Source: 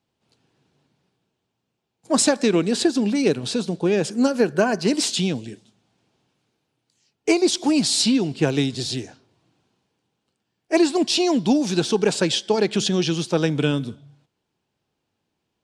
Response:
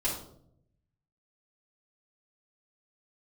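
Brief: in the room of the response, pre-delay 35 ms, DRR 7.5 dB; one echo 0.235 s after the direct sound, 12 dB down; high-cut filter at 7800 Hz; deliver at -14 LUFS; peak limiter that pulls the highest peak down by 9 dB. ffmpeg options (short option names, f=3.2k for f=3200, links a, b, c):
-filter_complex "[0:a]lowpass=7.8k,alimiter=limit=-14dB:level=0:latency=1,aecho=1:1:235:0.251,asplit=2[a][b];[1:a]atrim=start_sample=2205,adelay=35[c];[b][c]afir=irnorm=-1:irlink=0,volume=-14dB[d];[a][d]amix=inputs=2:normalize=0,volume=8.5dB"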